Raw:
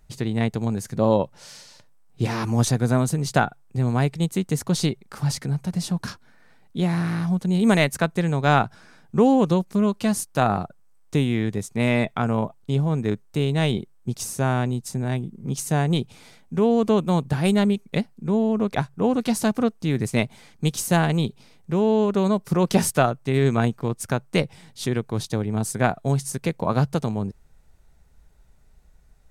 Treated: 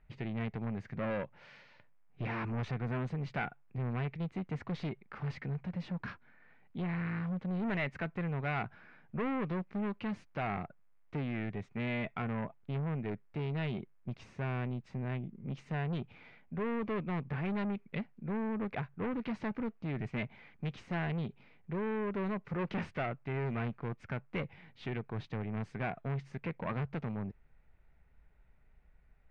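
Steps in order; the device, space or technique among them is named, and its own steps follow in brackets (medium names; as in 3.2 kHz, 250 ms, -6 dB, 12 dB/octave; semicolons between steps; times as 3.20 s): overdriven synthesiser ladder filter (saturation -23 dBFS, distortion -8 dB; four-pole ladder low-pass 2.7 kHz, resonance 45%)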